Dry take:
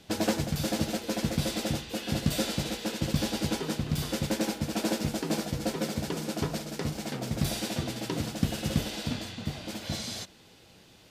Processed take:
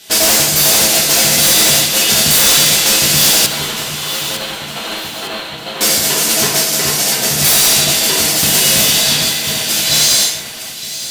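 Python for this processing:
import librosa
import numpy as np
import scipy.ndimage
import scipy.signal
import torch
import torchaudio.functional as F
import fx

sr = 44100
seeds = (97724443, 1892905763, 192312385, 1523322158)

y = fx.tilt_eq(x, sr, slope=4.5)
y = fx.rev_gated(y, sr, seeds[0], gate_ms=220, shape='falling', drr_db=-5.0)
y = fx.fold_sine(y, sr, drive_db=8, ceiling_db=-8.5)
y = fx.cheby_ripple(y, sr, hz=4300.0, ripple_db=6, at=(3.46, 5.81))
y = fx.echo_alternate(y, sr, ms=453, hz=2400.0, feedback_pct=67, wet_db=-5.5)
y = fx.upward_expand(y, sr, threshold_db=-25.0, expansion=1.5)
y = F.gain(torch.from_numpy(y), 2.0).numpy()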